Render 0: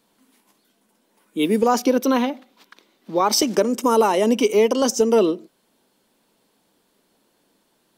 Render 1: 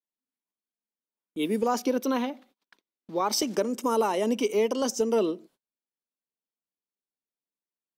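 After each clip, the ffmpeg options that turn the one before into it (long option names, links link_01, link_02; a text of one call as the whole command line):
ffmpeg -i in.wav -af "agate=range=-31dB:threshold=-47dB:ratio=16:detection=peak,volume=-8dB" out.wav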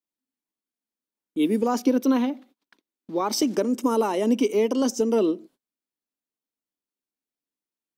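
ffmpeg -i in.wav -af "equalizer=frequency=280:width=1.8:gain=8.5" out.wav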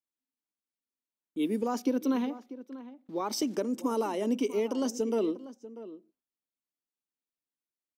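ffmpeg -i in.wav -filter_complex "[0:a]asplit=2[link_01][link_02];[link_02]adelay=641.4,volume=-15dB,highshelf=frequency=4000:gain=-14.4[link_03];[link_01][link_03]amix=inputs=2:normalize=0,volume=-7.5dB" out.wav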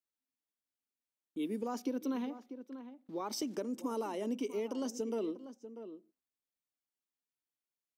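ffmpeg -i in.wav -af "acompressor=threshold=-36dB:ratio=1.5,volume=-3.5dB" out.wav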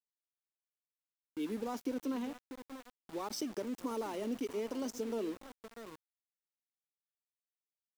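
ffmpeg -i in.wav -af "aeval=exprs='val(0)*gte(abs(val(0)),0.00596)':channel_layout=same,volume=-1dB" out.wav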